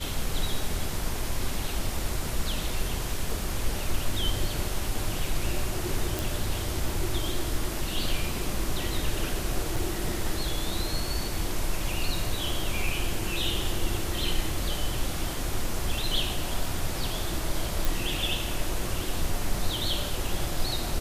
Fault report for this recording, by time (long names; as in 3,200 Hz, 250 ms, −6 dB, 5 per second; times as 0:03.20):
0:06.19: click
0:09.76: drop-out 4.1 ms
0:17.85: click